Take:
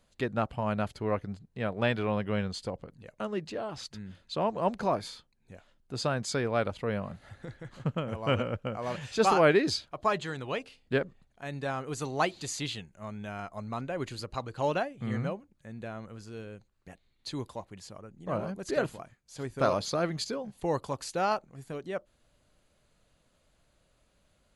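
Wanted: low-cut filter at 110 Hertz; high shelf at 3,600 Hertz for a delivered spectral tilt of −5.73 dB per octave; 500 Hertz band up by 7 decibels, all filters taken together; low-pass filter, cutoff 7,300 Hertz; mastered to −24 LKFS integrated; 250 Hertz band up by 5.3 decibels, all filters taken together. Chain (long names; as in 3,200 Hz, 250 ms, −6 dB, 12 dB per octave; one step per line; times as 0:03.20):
high-pass filter 110 Hz
low-pass filter 7,300 Hz
parametric band 250 Hz +5 dB
parametric band 500 Hz +7.5 dB
high-shelf EQ 3,600 Hz −7 dB
level +3 dB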